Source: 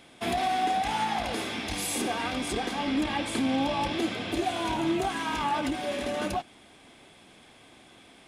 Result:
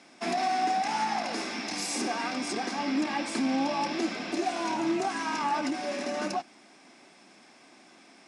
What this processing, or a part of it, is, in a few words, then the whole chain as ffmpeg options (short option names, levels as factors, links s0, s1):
television speaker: -af "highpass=f=190:w=0.5412,highpass=f=190:w=1.3066,equalizer=f=470:t=q:w=4:g=-6,equalizer=f=3300:t=q:w=4:g=-10,equalizer=f=5400:t=q:w=4:g=9,lowpass=f=8700:w=0.5412,lowpass=f=8700:w=1.3066"